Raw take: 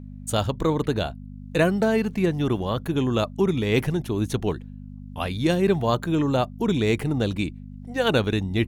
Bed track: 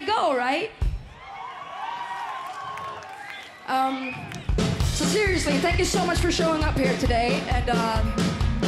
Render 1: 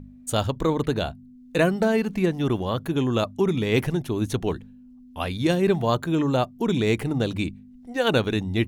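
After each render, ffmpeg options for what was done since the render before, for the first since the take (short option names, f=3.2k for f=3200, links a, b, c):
-af "bandreject=f=50:t=h:w=4,bandreject=f=100:t=h:w=4,bandreject=f=150:t=h:w=4,bandreject=f=200:t=h:w=4"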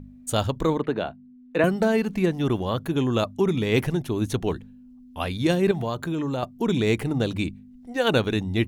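-filter_complex "[0:a]asettb=1/sr,asplit=3[a][b][c];[a]atrim=end=0.784[d];[b]atrim=start=0.78:end=1.64,asetpts=PTS-STARTPTS,afade=t=in:d=0.004:c=qsin,afade=t=out:st=0.856:d=0.004:c=qsin,acrossover=split=170 3000:gain=0.178 1 0.126[e][f][g];[e][f][g]amix=inputs=3:normalize=0[h];[c]atrim=start=1.636[i];[d][h]acrossfade=d=0.004:c1=hsin:c2=qsin[j];[j][i]acrossfade=d=0.004:c1=qsin:c2=hsin,asettb=1/sr,asplit=3[k][l][m];[k]atrim=end=5.714[n];[l]atrim=start=5.71:end=6.43,asetpts=PTS-STARTPTS,afade=t=in:d=0.004:c=qsin,afade=t=out:st=0.716:d=0.004:c=qsin,acompressor=threshold=-23dB:ratio=6:attack=3.2:release=140:knee=1:detection=peak[o];[m]atrim=start=6.426[p];[n][o]acrossfade=d=0.004:c1=hsin:c2=qsin[q];[q][p]acrossfade=d=0.004:c1=qsin:c2=hsin"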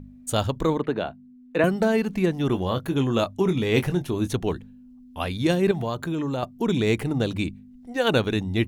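-filter_complex "[0:a]asettb=1/sr,asplit=3[a][b][c];[a]atrim=end=2.474[d];[b]atrim=start=2.47:end=4.28,asetpts=PTS-STARTPTS,afade=t=in:d=0.004:c=qsin,afade=t=out:st=1.806:d=0.004:c=qsin,asplit=2[e][f];[f]adelay=22,volume=-9dB[g];[e][g]amix=inputs=2:normalize=0,atrim=end_sample=79821[h];[c]atrim=start=4.276[i];[d][h]acrossfade=d=0.004:c1=hsin:c2=qsin[j];[j][i]acrossfade=d=0.004:c1=qsin:c2=hsin"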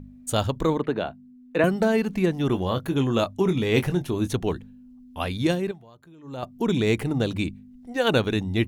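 -filter_complex "[0:a]asplit=3[a][b][c];[a]atrim=end=5.79,asetpts=PTS-STARTPTS,afade=t=out:st=5.45:d=0.34:silence=0.0794328[d];[b]atrim=start=5.79:end=6.22,asetpts=PTS-STARTPTS,volume=-22dB[e];[c]atrim=start=6.22,asetpts=PTS-STARTPTS,afade=t=in:d=0.34:silence=0.0794328[f];[d][e][f]concat=n=3:v=0:a=1"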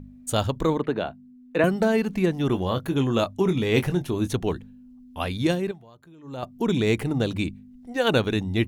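-af anull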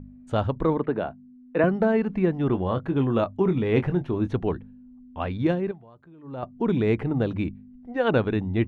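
-af "lowpass=1.8k"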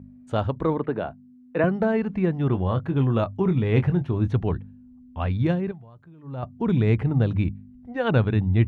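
-af "highpass=76,asubboost=boost=4.5:cutoff=140"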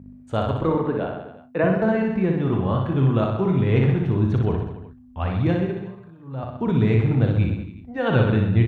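-filter_complex "[0:a]asplit=2[a][b];[b]adelay=37,volume=-10dB[c];[a][c]amix=inputs=2:normalize=0,aecho=1:1:60|126|198.6|278.5|366.3:0.631|0.398|0.251|0.158|0.1"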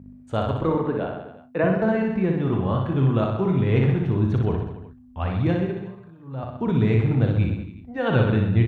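-af "volume=-1dB"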